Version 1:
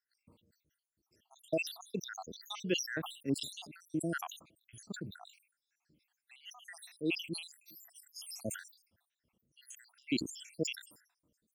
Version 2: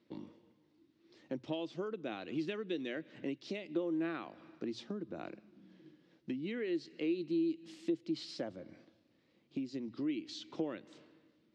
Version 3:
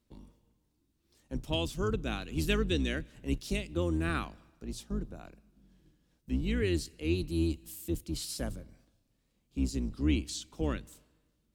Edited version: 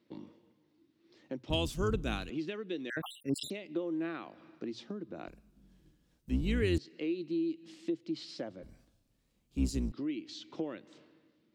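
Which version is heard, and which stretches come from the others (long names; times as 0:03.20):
2
0:01.50–0:02.30: punch in from 3
0:02.90–0:03.50: punch in from 1
0:05.28–0:06.78: punch in from 3
0:08.63–0:09.92: punch in from 3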